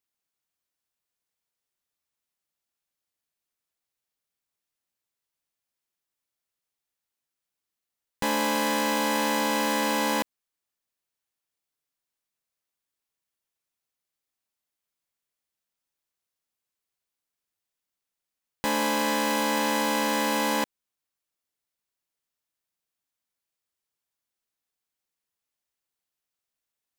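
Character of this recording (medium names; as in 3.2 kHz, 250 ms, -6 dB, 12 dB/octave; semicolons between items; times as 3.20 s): noise floor -87 dBFS; spectral tilt -3.0 dB/octave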